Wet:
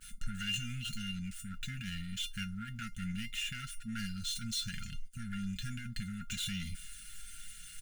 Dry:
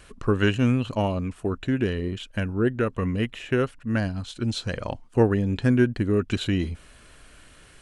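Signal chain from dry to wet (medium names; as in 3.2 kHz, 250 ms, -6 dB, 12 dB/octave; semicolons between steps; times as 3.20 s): median filter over 3 samples; pre-emphasis filter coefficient 0.9; expander -57 dBFS; bass shelf 390 Hz +8 dB; comb 5.4 ms, depth 47%; in parallel at +1.5 dB: level held to a coarse grid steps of 13 dB; on the sum: peak limiter -27.5 dBFS, peak gain reduction 9.5 dB; waveshaping leveller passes 2; feedback comb 700 Hz, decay 0.17 s, harmonics all, mix 90%; mains buzz 400 Hz, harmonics 3, -69 dBFS; brick-wall FIR band-stop 250–1300 Hz; trim +11.5 dB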